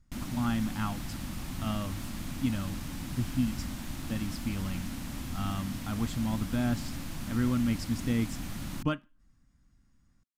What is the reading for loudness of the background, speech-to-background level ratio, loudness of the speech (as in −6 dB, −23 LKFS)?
−39.0 LKFS, 5.0 dB, −34.0 LKFS